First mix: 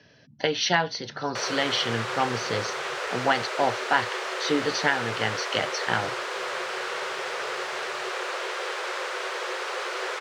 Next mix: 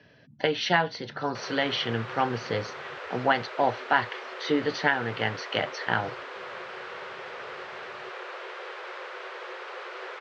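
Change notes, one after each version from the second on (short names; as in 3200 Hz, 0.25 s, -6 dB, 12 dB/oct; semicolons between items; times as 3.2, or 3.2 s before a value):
background -7.5 dB; master: add LPF 3300 Hz 12 dB/oct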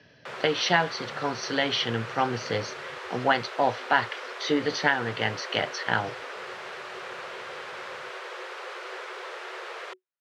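background: entry -1.10 s; master: remove air absorption 110 m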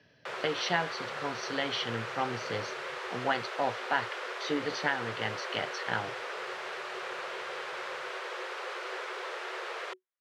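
speech -7.0 dB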